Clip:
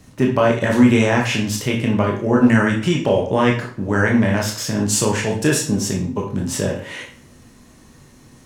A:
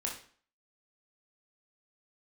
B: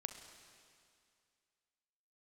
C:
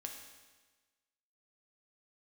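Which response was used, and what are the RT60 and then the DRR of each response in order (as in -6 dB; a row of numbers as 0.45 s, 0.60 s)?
A; 0.45 s, 2.3 s, 1.3 s; -1.5 dB, 6.5 dB, 2.0 dB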